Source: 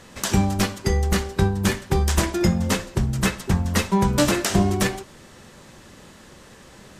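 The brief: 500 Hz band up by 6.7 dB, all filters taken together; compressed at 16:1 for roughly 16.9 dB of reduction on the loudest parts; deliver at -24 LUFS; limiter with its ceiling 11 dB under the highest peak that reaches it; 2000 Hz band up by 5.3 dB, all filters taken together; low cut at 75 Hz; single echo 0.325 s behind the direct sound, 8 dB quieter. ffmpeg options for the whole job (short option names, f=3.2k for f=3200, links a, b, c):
-af "highpass=75,equalizer=f=500:t=o:g=9,equalizer=f=2k:t=o:g=6,acompressor=threshold=-28dB:ratio=16,alimiter=limit=-23dB:level=0:latency=1,aecho=1:1:325:0.398,volume=11dB"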